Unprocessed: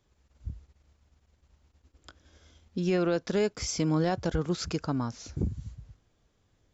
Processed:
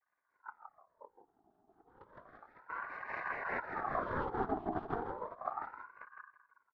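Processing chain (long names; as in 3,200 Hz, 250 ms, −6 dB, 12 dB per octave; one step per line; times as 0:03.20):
source passing by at 0:02.24, 15 m/s, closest 5.3 metres
on a send: repeating echo 162 ms, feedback 26%, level −3.5 dB
on the sum: compressor whose output falls as the input rises −41 dBFS, ratio −1
Chebyshev low-pass with heavy ripple 680 Hz, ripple 3 dB
single-tap delay 556 ms −8.5 dB
cochlear-implant simulation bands 4
rotating-speaker cabinet horn 5 Hz, later 1.1 Hz, at 0:03.96
ring modulator whose carrier an LFO sweeps 940 Hz, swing 45%, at 0.32 Hz
level +9 dB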